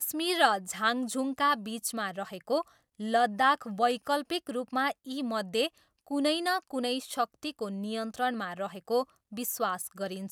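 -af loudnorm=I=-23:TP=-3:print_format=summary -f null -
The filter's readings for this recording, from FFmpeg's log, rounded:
Input Integrated:    -31.1 LUFS
Input True Peak:      -9.7 dBTP
Input LRA:             4.2 LU
Input Threshold:     -41.1 LUFS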